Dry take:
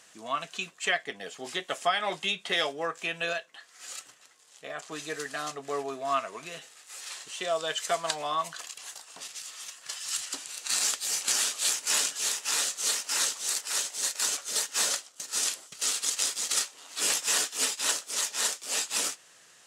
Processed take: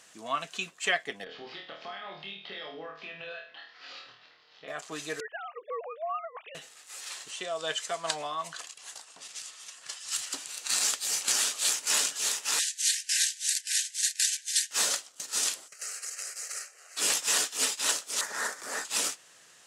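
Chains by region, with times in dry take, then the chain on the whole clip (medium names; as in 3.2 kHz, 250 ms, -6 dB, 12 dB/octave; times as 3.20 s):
1.24–4.68 s: steep low-pass 4.8 kHz 48 dB/octave + compression 4:1, threshold -43 dBFS + flutter echo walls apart 4.4 m, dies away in 0.46 s
5.20–6.55 s: formants replaced by sine waves + compression 5:1, threshold -30 dBFS
7.31–10.12 s: tremolo 2.4 Hz, depth 48% + low-pass 11 kHz 24 dB/octave
12.59–14.71 s: brick-wall FIR band-pass 1.5–12 kHz + transient shaper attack +5 dB, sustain -5 dB
15.68–16.97 s: frequency weighting A + compression 4:1, threshold -30 dBFS + static phaser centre 950 Hz, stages 6
18.21–18.85 s: resonant high shelf 2.2 kHz -8 dB, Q 3 + swell ahead of each attack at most 75 dB/s
whole clip: none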